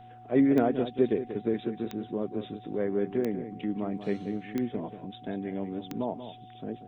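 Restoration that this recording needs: de-click; de-hum 116.6 Hz, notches 3; notch 740 Hz, Q 30; inverse comb 0.185 s -11 dB

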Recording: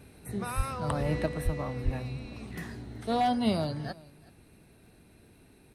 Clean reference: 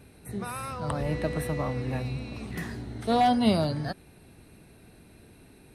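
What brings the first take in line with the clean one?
de-click; 0.56–0.68 HPF 140 Hz 24 dB/oct; 1.44–1.56 HPF 140 Hz 24 dB/oct; 1.84–1.96 HPF 140 Hz 24 dB/oct; inverse comb 0.375 s -22 dB; 1.26 gain correction +4.5 dB

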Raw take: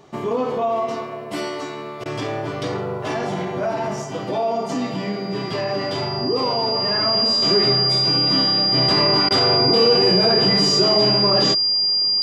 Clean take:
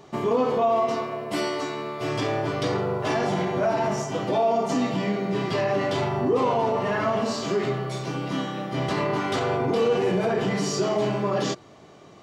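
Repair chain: notch 4800 Hz, Q 30; interpolate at 2.04/9.29, 15 ms; gain correction -5 dB, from 7.42

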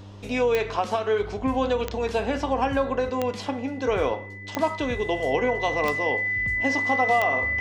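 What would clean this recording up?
de-click; de-hum 99.8 Hz, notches 4; notch 2000 Hz, Q 30

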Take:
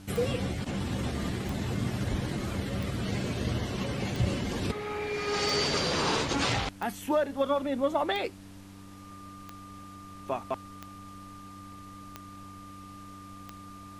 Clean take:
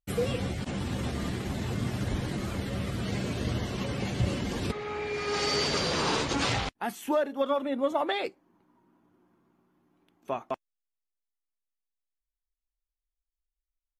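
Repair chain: de-click; de-hum 96.9 Hz, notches 3; notch 1200 Hz, Q 30; noise print and reduce 30 dB

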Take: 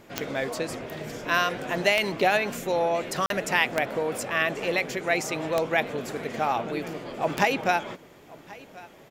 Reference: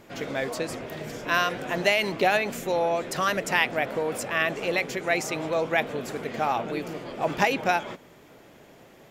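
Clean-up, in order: de-click; interpolate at 3.26, 42 ms; inverse comb 1.084 s -21.5 dB

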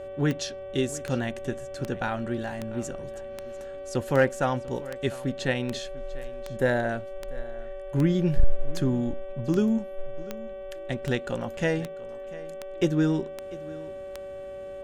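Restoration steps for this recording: de-click; de-hum 383 Hz, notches 9; notch 570 Hz, Q 30; inverse comb 0.695 s -19 dB

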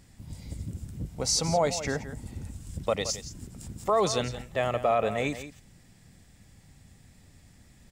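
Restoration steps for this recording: inverse comb 0.171 s -12.5 dB

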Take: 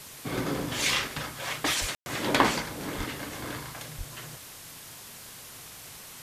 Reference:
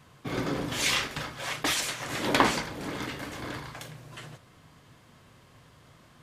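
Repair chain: 1.8–1.92 HPF 140 Hz 24 dB/oct; 2.97–3.09 HPF 140 Hz 24 dB/oct; 3.97–4.09 HPF 140 Hz 24 dB/oct; room tone fill 1.95–2.06; noise print and reduce 11 dB

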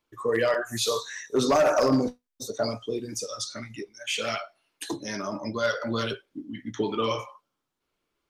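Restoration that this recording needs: clip repair -16 dBFS

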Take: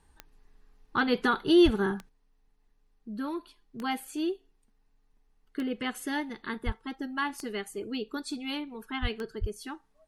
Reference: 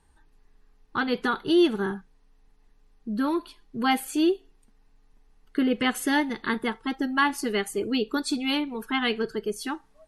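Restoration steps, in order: de-click; de-plosive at 1.64/6.65/9.01/9.4; gain correction +8.5 dB, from 2.09

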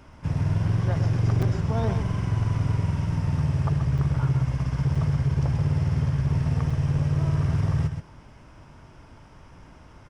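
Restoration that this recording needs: clip repair -17 dBFS; interpolate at 1.42/3.98/4.95/6.7, 5 ms; inverse comb 0.13 s -8 dB

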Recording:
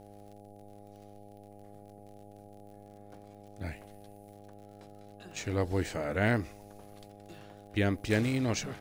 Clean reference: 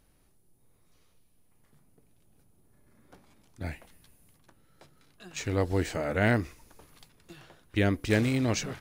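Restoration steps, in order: de-click; de-hum 102.1 Hz, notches 8; gain correction +3 dB, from 2.86

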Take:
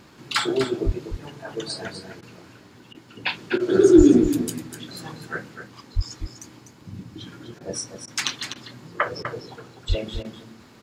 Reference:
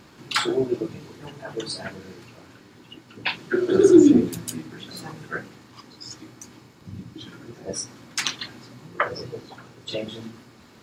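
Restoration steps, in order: de-plosive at 0.85/3.97/5.95/9.88; interpolate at 2.21/2.93/3.58/7.59/8.06/8.54/9.23/10.23, 15 ms; inverse comb 0.249 s -9 dB

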